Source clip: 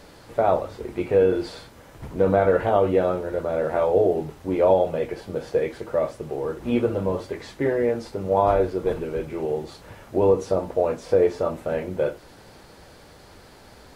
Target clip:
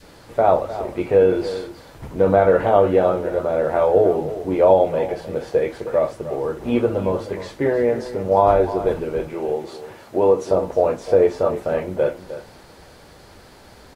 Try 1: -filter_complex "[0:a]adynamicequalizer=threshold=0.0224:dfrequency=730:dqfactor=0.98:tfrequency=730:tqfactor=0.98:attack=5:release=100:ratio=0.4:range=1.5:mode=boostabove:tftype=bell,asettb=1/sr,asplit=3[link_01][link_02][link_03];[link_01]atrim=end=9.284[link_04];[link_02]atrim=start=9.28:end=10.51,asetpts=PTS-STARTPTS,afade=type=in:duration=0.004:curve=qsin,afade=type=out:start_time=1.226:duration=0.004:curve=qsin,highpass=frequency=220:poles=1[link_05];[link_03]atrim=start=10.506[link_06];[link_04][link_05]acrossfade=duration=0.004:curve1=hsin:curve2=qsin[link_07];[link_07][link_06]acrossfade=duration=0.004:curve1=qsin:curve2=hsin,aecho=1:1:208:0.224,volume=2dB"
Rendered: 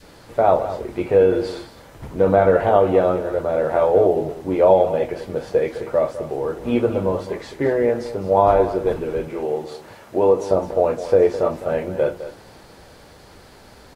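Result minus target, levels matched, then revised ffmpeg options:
echo 100 ms early
-filter_complex "[0:a]adynamicequalizer=threshold=0.0224:dfrequency=730:dqfactor=0.98:tfrequency=730:tqfactor=0.98:attack=5:release=100:ratio=0.4:range=1.5:mode=boostabove:tftype=bell,asettb=1/sr,asplit=3[link_01][link_02][link_03];[link_01]atrim=end=9.284[link_04];[link_02]atrim=start=9.28:end=10.51,asetpts=PTS-STARTPTS,afade=type=in:duration=0.004:curve=qsin,afade=type=out:start_time=1.226:duration=0.004:curve=qsin,highpass=frequency=220:poles=1[link_05];[link_03]atrim=start=10.506[link_06];[link_04][link_05]acrossfade=duration=0.004:curve1=hsin:curve2=qsin[link_07];[link_07][link_06]acrossfade=duration=0.004:curve1=qsin:curve2=hsin,aecho=1:1:308:0.224,volume=2dB"

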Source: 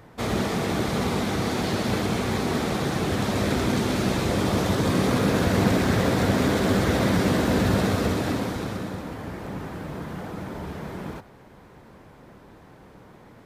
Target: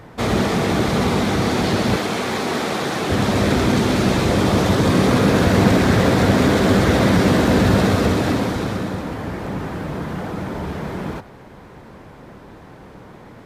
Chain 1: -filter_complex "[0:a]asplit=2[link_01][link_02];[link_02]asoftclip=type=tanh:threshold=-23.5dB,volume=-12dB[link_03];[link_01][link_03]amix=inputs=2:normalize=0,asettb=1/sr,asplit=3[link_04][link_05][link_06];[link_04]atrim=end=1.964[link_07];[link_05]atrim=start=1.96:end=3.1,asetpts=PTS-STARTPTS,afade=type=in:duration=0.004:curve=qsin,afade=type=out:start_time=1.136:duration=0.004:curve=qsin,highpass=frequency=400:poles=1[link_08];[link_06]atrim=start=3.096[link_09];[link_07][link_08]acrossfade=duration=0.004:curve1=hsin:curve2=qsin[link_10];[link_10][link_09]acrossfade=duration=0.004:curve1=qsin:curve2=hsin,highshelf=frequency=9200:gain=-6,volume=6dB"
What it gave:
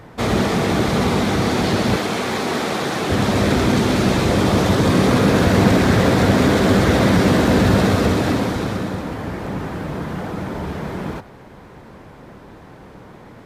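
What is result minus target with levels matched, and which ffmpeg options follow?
soft clipping: distortion −4 dB
-filter_complex "[0:a]asplit=2[link_01][link_02];[link_02]asoftclip=type=tanh:threshold=-30dB,volume=-12dB[link_03];[link_01][link_03]amix=inputs=2:normalize=0,asettb=1/sr,asplit=3[link_04][link_05][link_06];[link_04]atrim=end=1.964[link_07];[link_05]atrim=start=1.96:end=3.1,asetpts=PTS-STARTPTS,afade=type=in:duration=0.004:curve=qsin,afade=type=out:start_time=1.136:duration=0.004:curve=qsin,highpass=frequency=400:poles=1[link_08];[link_06]atrim=start=3.096[link_09];[link_07][link_08]acrossfade=duration=0.004:curve1=hsin:curve2=qsin[link_10];[link_10][link_09]acrossfade=duration=0.004:curve1=qsin:curve2=hsin,highshelf=frequency=9200:gain=-6,volume=6dB"

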